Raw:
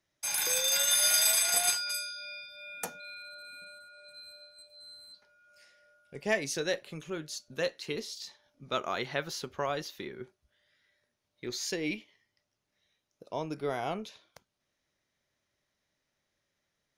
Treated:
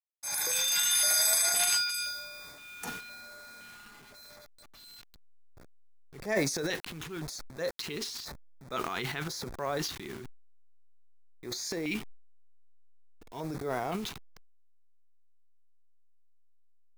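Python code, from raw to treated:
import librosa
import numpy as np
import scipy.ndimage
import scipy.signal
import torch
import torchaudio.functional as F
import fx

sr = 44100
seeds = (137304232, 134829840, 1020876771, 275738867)

y = fx.delta_hold(x, sr, step_db=-46.0)
y = fx.filter_lfo_notch(y, sr, shape='square', hz=0.97, low_hz=570.0, high_hz=2900.0, q=1.7)
y = fx.transient(y, sr, attack_db=-5, sustain_db=11)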